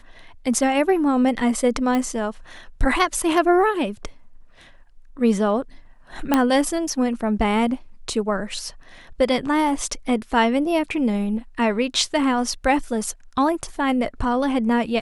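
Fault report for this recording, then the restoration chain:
1.95 pop -11 dBFS
6.34 pop -4 dBFS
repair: de-click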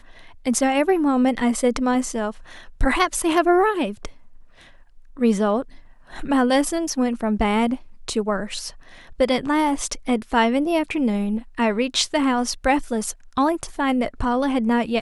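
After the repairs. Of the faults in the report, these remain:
6.34 pop

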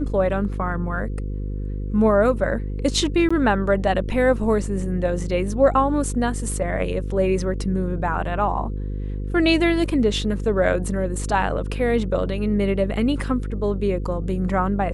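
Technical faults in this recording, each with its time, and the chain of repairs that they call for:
buzz 50 Hz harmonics 10 -27 dBFS
3.29–3.31 gap 15 ms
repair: de-hum 50 Hz, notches 10; interpolate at 3.29, 15 ms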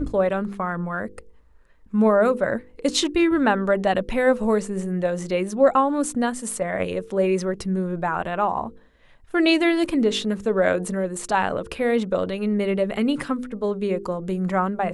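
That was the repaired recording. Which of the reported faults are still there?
none

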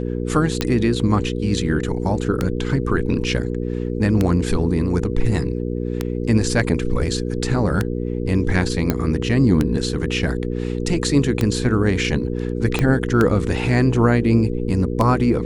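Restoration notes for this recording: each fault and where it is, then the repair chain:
hum 60 Hz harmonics 8 -24 dBFS
tick 33 1/3 rpm -6 dBFS
8.9 pop -6 dBFS
12.79 pop -6 dBFS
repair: de-click; de-hum 60 Hz, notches 8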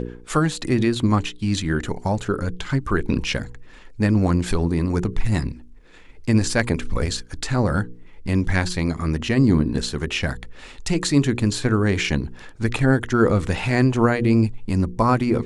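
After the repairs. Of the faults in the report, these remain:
8.9 pop
12.79 pop

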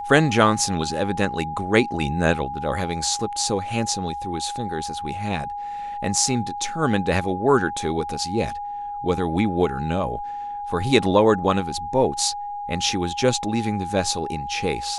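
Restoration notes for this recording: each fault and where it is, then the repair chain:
tone 820 Hz -28 dBFS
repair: notch 820 Hz, Q 30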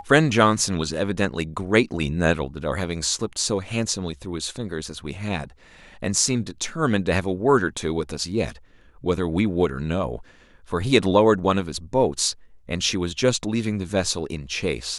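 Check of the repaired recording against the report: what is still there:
none

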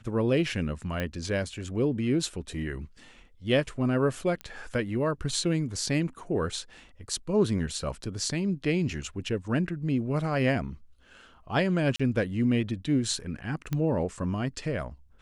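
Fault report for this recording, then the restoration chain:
1 pop -17 dBFS
4.41 pop -22 dBFS
11.96–11.99 gap 35 ms
13.73 pop -17 dBFS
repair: de-click; interpolate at 11.96, 35 ms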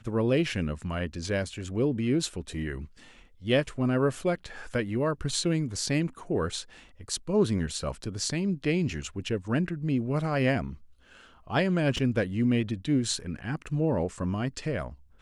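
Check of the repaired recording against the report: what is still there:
4.41 pop

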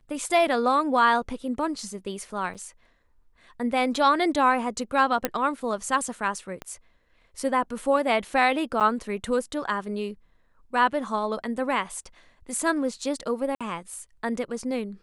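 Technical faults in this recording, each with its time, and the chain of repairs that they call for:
2.54–2.55 gap 7.4 ms
5.25 pop -8 dBFS
6.62 pop -20 dBFS
8.8–8.81 gap 8 ms
13.55–13.61 gap 56 ms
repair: de-click; interpolate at 2.54, 7.4 ms; interpolate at 8.8, 8 ms; interpolate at 13.55, 56 ms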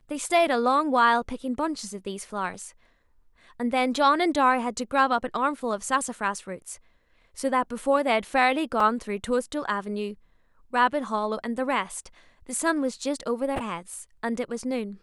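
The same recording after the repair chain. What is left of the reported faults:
6.62 pop

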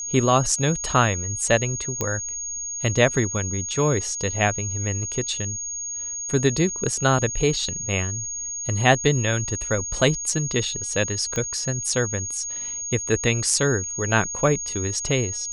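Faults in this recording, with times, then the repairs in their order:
tone 6600 Hz -28 dBFS
2.01 pop -9 dBFS
11.36 pop -13 dBFS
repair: de-click; notch 6600 Hz, Q 30

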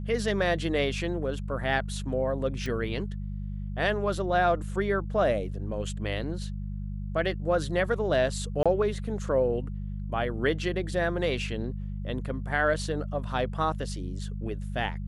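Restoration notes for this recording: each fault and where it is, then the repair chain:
hum 50 Hz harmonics 4 -34 dBFS
2.66 pop -22 dBFS
8.63–8.66 gap 26 ms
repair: de-click; de-hum 50 Hz, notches 4; interpolate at 8.63, 26 ms

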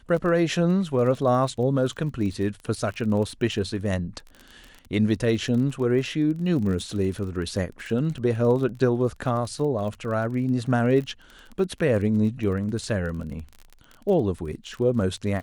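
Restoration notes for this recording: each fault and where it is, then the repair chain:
crackle 29/s -32 dBFS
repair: de-click

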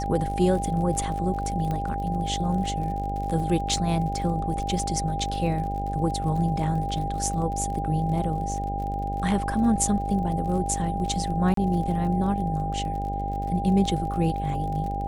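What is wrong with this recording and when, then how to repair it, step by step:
buzz 50 Hz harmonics 15 -31 dBFS
crackle 47/s -34 dBFS
tone 800 Hz -29 dBFS
1.71 pop -18 dBFS
11.54–11.57 gap 33 ms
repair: de-click; de-hum 50 Hz, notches 15; notch 800 Hz, Q 30; interpolate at 11.54, 33 ms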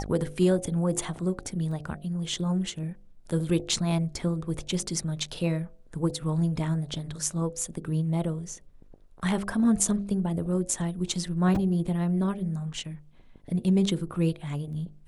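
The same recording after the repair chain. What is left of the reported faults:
1.71 pop

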